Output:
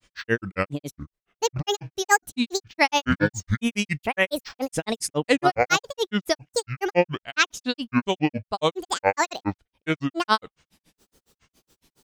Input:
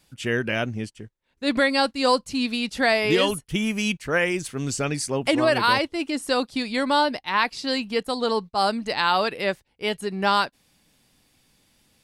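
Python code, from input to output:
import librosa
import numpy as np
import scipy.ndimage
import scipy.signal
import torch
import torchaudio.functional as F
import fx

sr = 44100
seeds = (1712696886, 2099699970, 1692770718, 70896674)

y = fx.granulator(x, sr, seeds[0], grain_ms=103.0, per_s=7.2, spray_ms=29.0, spread_st=12)
y = y * librosa.db_to_amplitude(4.0)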